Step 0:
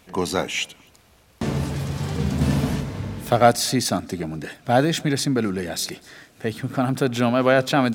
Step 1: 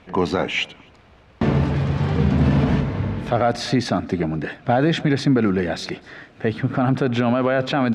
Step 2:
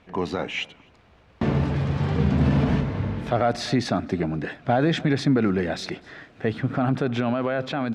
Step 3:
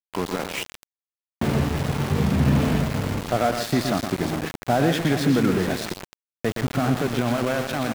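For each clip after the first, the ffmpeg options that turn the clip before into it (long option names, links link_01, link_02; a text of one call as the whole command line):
ffmpeg -i in.wav -af "lowpass=2700,alimiter=level_in=13.5dB:limit=-1dB:release=50:level=0:latency=1,volume=-7.5dB" out.wav
ffmpeg -i in.wav -af "dynaudnorm=framelen=370:gausssize=7:maxgain=4dB,volume=-6.5dB" out.wav
ffmpeg -i in.wav -af "aecho=1:1:118|162|412:0.447|0.188|0.266,aeval=exprs='val(0)*gte(abs(val(0)),0.0531)':channel_layout=same" out.wav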